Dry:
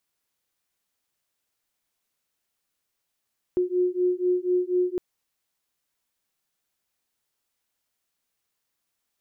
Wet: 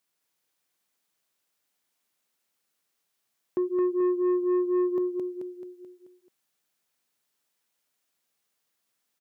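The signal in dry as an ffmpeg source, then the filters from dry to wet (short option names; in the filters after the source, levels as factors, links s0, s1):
-f lavfi -i "aevalsrc='0.0631*(sin(2*PI*359*t)+sin(2*PI*363.1*t))':d=1.41:s=44100"
-filter_complex "[0:a]highpass=130,asplit=2[s0][s1];[s1]aecho=0:1:217|434|651|868|1085|1302:0.562|0.287|0.146|0.0746|0.038|0.0194[s2];[s0][s2]amix=inputs=2:normalize=0,asoftclip=type=tanh:threshold=0.0944"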